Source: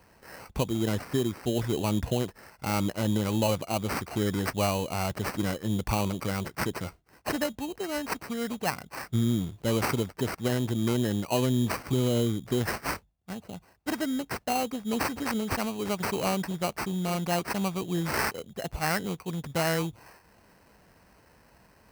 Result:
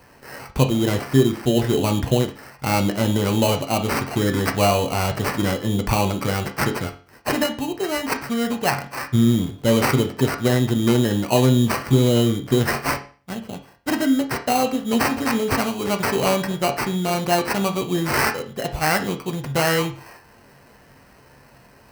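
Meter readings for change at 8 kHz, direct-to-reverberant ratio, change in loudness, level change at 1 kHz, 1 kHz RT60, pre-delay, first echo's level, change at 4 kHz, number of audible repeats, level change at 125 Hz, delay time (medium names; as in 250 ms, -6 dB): +7.5 dB, 4.0 dB, +8.5 dB, +9.0 dB, 0.40 s, 7 ms, no echo, +9.0 dB, no echo, +8.5 dB, no echo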